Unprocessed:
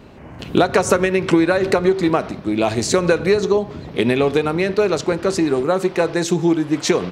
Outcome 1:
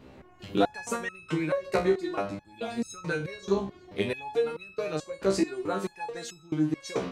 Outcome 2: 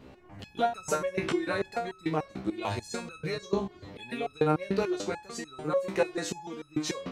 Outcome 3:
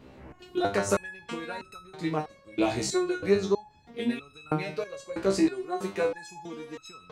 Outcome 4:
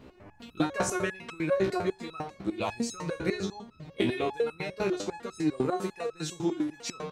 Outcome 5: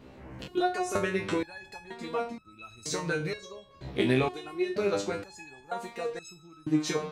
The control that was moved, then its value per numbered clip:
step-sequenced resonator, speed: 4.6, 6.8, 3.1, 10, 2.1 Hertz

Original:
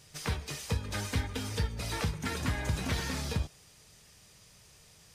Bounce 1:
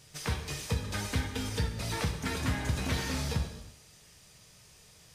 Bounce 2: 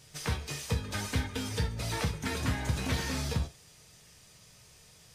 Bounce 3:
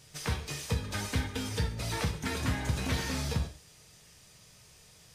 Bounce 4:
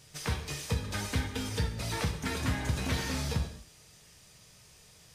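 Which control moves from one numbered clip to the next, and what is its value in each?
reverb whose tail is shaped and stops, gate: 370, 100, 170, 250 milliseconds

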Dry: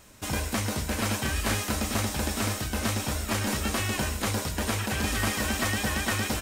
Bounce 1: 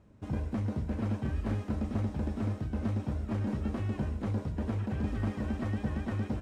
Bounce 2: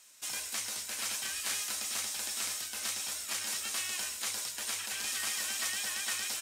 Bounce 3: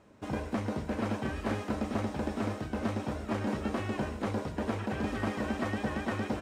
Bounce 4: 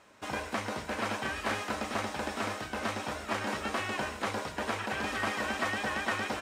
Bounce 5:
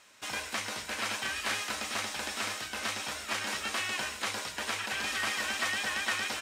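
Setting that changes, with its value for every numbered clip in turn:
resonant band-pass, frequency: 130, 7,600, 350, 960, 2,500 Hertz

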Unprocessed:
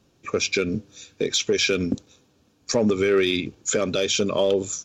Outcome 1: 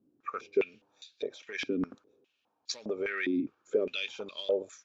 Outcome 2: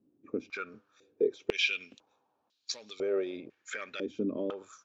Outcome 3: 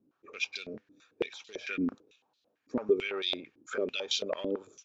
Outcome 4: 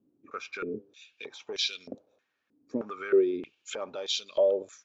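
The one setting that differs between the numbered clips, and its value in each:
band-pass on a step sequencer, speed: 4.9, 2, 9, 3.2 Hertz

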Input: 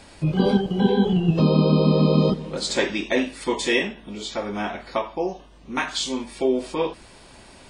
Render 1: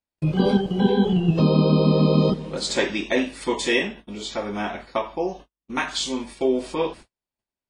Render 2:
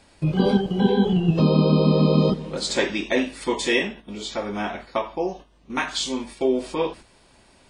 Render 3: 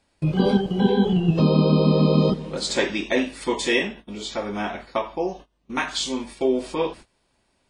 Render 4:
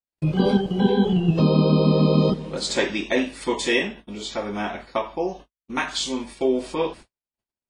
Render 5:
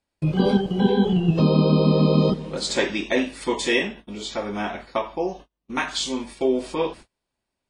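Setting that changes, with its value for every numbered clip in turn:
noise gate, range: −47, −8, −21, −59, −35 decibels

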